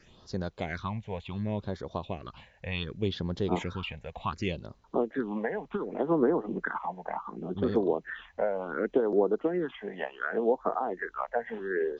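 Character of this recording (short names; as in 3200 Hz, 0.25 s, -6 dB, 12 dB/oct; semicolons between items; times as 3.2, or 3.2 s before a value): phasing stages 6, 0.68 Hz, lowest notch 320–2600 Hz; a quantiser's noise floor 12-bit, dither none; MP2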